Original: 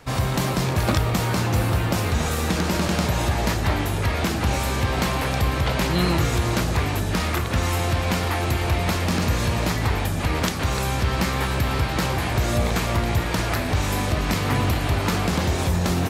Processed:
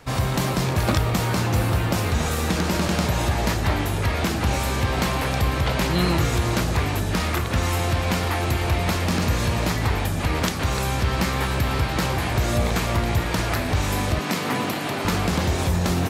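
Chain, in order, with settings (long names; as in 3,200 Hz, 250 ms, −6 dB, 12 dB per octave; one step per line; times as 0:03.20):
0:14.19–0:15.05: high-pass filter 160 Hz 24 dB per octave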